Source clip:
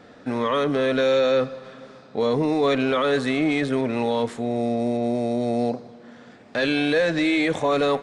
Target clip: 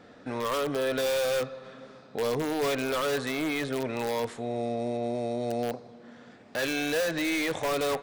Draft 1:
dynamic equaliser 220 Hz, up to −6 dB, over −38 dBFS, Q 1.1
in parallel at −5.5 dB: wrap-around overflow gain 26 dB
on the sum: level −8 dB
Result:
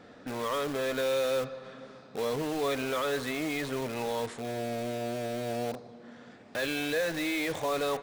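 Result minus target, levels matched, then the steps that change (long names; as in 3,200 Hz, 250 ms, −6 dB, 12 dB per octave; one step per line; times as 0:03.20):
wrap-around overflow: distortion +25 dB
change: wrap-around overflow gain 16.5 dB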